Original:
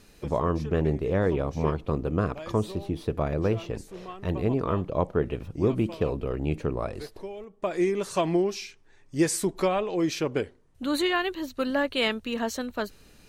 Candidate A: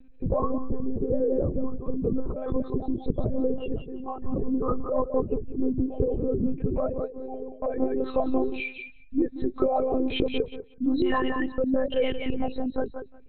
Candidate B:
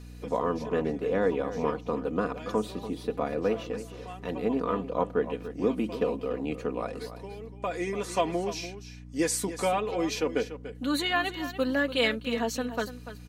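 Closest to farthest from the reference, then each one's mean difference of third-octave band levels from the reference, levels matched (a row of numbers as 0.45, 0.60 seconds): B, A; 4.5, 11.5 decibels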